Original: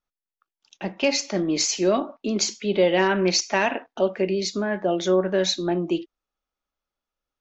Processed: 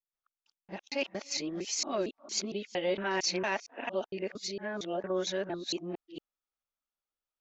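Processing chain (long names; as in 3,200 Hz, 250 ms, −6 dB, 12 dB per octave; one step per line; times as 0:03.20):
reversed piece by piece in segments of 229 ms
low-shelf EQ 440 Hz −6 dB
level −9 dB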